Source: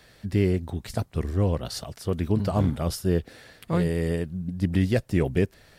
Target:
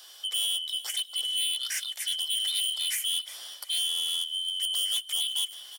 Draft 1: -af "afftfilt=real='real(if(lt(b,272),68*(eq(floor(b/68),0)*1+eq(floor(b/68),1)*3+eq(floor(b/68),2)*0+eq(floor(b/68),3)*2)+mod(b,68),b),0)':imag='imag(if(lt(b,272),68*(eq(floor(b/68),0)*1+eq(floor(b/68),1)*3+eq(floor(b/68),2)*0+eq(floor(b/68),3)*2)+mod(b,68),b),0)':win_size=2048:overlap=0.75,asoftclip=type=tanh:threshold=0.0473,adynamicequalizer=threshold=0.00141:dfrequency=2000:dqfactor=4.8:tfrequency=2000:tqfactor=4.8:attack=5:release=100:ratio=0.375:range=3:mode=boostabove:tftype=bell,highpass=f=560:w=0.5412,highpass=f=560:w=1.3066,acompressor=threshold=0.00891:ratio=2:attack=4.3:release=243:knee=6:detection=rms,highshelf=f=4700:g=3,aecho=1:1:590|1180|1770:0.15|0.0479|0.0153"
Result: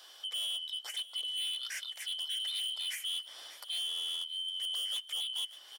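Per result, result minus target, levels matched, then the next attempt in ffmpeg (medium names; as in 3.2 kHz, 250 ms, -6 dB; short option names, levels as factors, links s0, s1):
echo 233 ms late; 8 kHz band -5.0 dB; compression: peak gain reduction +3 dB
-af "afftfilt=real='real(if(lt(b,272),68*(eq(floor(b/68),0)*1+eq(floor(b/68),1)*3+eq(floor(b/68),2)*0+eq(floor(b/68),3)*2)+mod(b,68),b),0)':imag='imag(if(lt(b,272),68*(eq(floor(b/68),0)*1+eq(floor(b/68),1)*3+eq(floor(b/68),2)*0+eq(floor(b/68),3)*2)+mod(b,68),b),0)':win_size=2048:overlap=0.75,asoftclip=type=tanh:threshold=0.0473,adynamicequalizer=threshold=0.00141:dfrequency=2000:dqfactor=4.8:tfrequency=2000:tqfactor=4.8:attack=5:release=100:ratio=0.375:range=3:mode=boostabove:tftype=bell,highpass=f=560:w=0.5412,highpass=f=560:w=1.3066,acompressor=threshold=0.00891:ratio=2:attack=4.3:release=243:knee=6:detection=rms,highshelf=f=4700:g=14.5,aecho=1:1:357|714|1071:0.15|0.0479|0.0153"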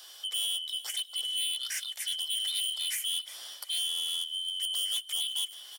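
compression: peak gain reduction +3 dB
-af "afftfilt=real='real(if(lt(b,272),68*(eq(floor(b/68),0)*1+eq(floor(b/68),1)*3+eq(floor(b/68),2)*0+eq(floor(b/68),3)*2)+mod(b,68),b),0)':imag='imag(if(lt(b,272),68*(eq(floor(b/68),0)*1+eq(floor(b/68),1)*3+eq(floor(b/68),2)*0+eq(floor(b/68),3)*2)+mod(b,68),b),0)':win_size=2048:overlap=0.75,asoftclip=type=tanh:threshold=0.0473,adynamicequalizer=threshold=0.00141:dfrequency=2000:dqfactor=4.8:tfrequency=2000:tqfactor=4.8:attack=5:release=100:ratio=0.375:range=3:mode=boostabove:tftype=bell,highpass=f=560:w=0.5412,highpass=f=560:w=1.3066,acompressor=threshold=0.0178:ratio=2:attack=4.3:release=243:knee=6:detection=rms,highshelf=f=4700:g=14.5,aecho=1:1:357|714|1071:0.15|0.0479|0.0153"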